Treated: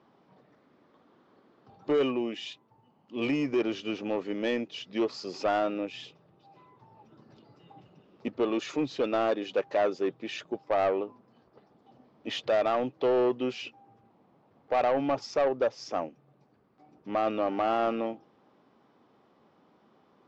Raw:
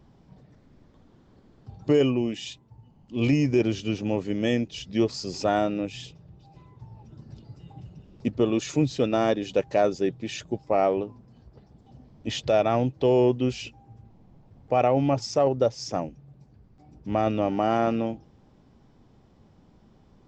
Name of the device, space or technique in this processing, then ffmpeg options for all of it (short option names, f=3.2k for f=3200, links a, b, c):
intercom: -af "highpass=330,lowpass=3.7k,equalizer=f=1.2k:t=o:w=0.37:g=5.5,asoftclip=type=tanh:threshold=-19.5dB"